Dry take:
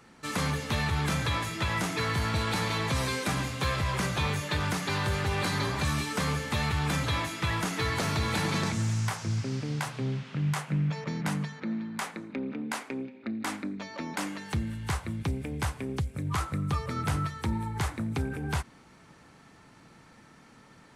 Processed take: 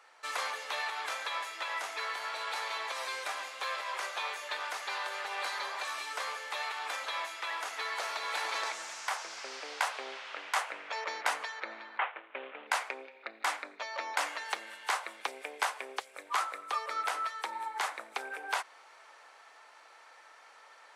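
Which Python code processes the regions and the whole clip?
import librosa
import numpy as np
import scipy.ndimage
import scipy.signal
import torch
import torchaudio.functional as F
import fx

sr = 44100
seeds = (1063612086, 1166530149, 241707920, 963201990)

y = fx.chain(x, sr, fx.cvsd(bps=16000),
    fx.upward_expand(threshold_db=-44.0, expansion=1.5), at=(11.98, 12.67))
y = scipy.signal.sosfilt(scipy.signal.cheby2(4, 60, 170.0, 'highpass', fs=sr, output='sos'), y)
y = fx.high_shelf(y, sr, hz=6500.0, db=-8.0)
y = fx.rider(y, sr, range_db=10, speed_s=2.0)
y = F.gain(torch.from_numpy(y), -1.0).numpy()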